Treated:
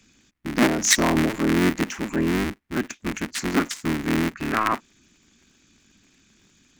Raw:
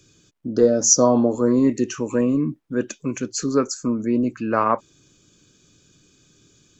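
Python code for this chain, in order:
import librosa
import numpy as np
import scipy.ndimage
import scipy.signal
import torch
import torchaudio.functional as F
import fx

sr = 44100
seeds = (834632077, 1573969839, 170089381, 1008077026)

y = fx.cycle_switch(x, sr, every=3, mode='inverted')
y = fx.graphic_eq_10(y, sr, hz=(125, 250, 500, 2000), db=(-4, 9, -10, 9))
y = y * librosa.db_to_amplitude(-4.0)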